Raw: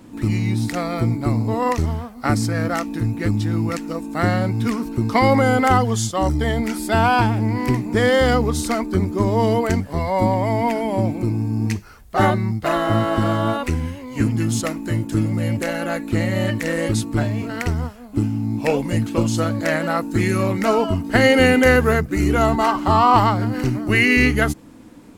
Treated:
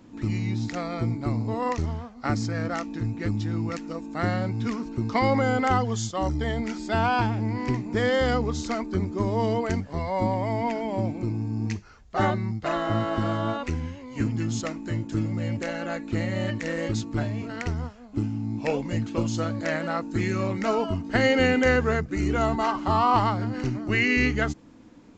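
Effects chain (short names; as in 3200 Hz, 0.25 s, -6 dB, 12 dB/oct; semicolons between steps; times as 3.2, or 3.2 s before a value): downsampling 16000 Hz; gain -7 dB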